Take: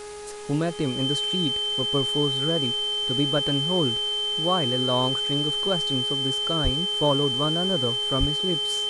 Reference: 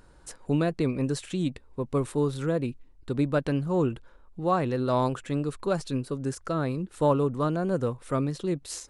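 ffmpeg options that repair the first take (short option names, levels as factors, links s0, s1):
-filter_complex "[0:a]bandreject=f=416.6:t=h:w=4,bandreject=f=833.2:t=h:w=4,bandreject=f=1249.8:t=h:w=4,bandreject=f=1666.4:t=h:w=4,bandreject=f=2083:t=h:w=4,bandreject=f=2499.6:t=h:w=4,bandreject=f=3100:w=30,asplit=3[s0][s1][s2];[s0]afade=t=out:st=6.63:d=0.02[s3];[s1]highpass=f=140:w=0.5412,highpass=f=140:w=1.3066,afade=t=in:st=6.63:d=0.02,afade=t=out:st=6.75:d=0.02[s4];[s2]afade=t=in:st=6.75:d=0.02[s5];[s3][s4][s5]amix=inputs=3:normalize=0,asplit=3[s6][s7][s8];[s6]afade=t=out:st=8.19:d=0.02[s9];[s7]highpass=f=140:w=0.5412,highpass=f=140:w=1.3066,afade=t=in:st=8.19:d=0.02,afade=t=out:st=8.31:d=0.02[s10];[s8]afade=t=in:st=8.31:d=0.02[s11];[s9][s10][s11]amix=inputs=3:normalize=0,afwtdn=0.0071"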